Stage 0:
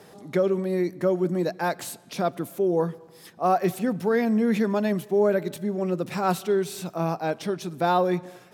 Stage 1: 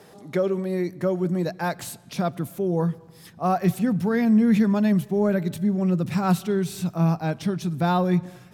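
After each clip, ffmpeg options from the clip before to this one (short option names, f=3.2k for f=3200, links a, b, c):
-af "asubboost=boost=7:cutoff=160"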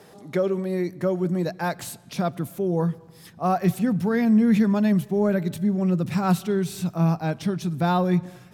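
-af anull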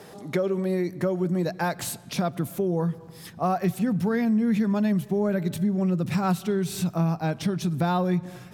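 -af "acompressor=threshold=-27dB:ratio=3,volume=4dB"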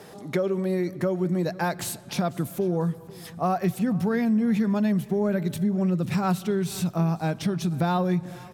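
-af "aecho=1:1:494|988|1482:0.0794|0.0302|0.0115"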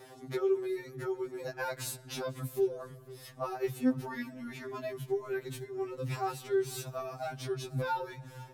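-af "afftfilt=real='re*2.45*eq(mod(b,6),0)':imag='im*2.45*eq(mod(b,6),0)':win_size=2048:overlap=0.75,volume=-4.5dB"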